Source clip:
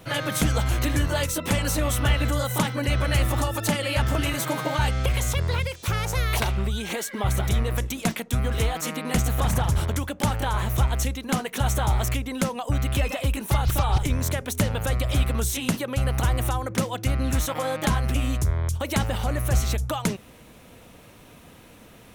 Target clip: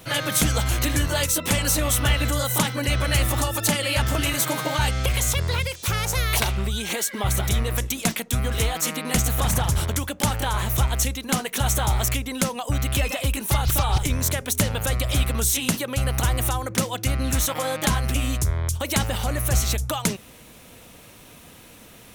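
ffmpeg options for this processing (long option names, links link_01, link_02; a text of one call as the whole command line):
ffmpeg -i in.wav -af "highshelf=frequency=2800:gain=8" out.wav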